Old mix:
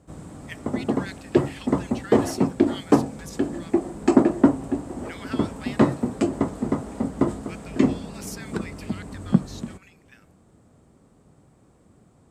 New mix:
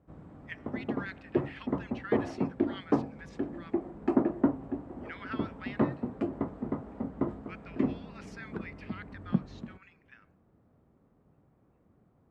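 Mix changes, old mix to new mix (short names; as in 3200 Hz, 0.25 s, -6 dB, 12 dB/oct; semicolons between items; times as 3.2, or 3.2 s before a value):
background -9.5 dB; master: add LPF 2000 Hz 12 dB/oct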